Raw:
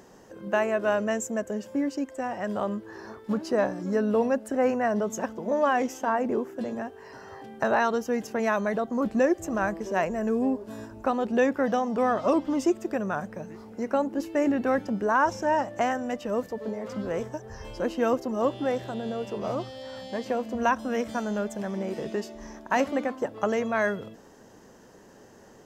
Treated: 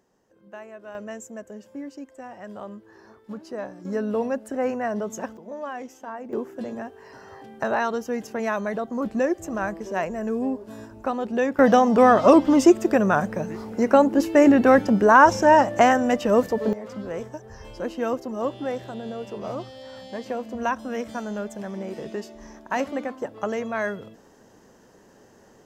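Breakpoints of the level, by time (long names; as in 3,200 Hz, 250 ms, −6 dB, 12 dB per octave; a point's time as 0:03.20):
−16 dB
from 0:00.95 −8.5 dB
from 0:03.85 −1.5 dB
from 0:05.37 −10 dB
from 0:06.33 −0.5 dB
from 0:11.59 +9.5 dB
from 0:16.73 −1.5 dB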